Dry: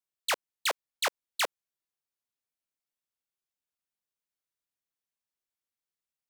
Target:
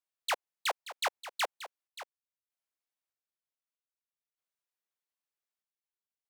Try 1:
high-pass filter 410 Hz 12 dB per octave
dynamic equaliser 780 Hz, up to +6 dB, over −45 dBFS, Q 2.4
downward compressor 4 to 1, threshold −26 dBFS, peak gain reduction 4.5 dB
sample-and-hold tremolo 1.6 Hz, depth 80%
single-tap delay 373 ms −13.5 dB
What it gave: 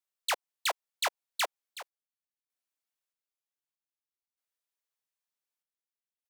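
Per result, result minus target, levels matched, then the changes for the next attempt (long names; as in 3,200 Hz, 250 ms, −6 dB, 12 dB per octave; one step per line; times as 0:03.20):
echo 207 ms early; 8,000 Hz band +2.5 dB
change: single-tap delay 580 ms −13.5 dB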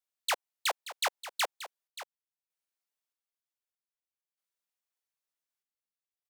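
8,000 Hz band +2.5 dB
add after downward compressor: high-shelf EQ 3,600 Hz −5.5 dB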